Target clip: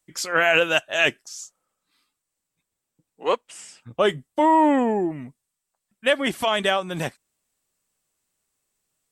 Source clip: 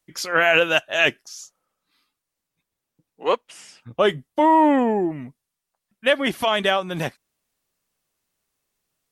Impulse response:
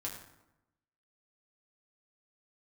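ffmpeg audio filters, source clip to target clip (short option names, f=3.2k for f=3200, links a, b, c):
-af "equalizer=f=7.9k:t=o:w=0.32:g=10,volume=-1.5dB"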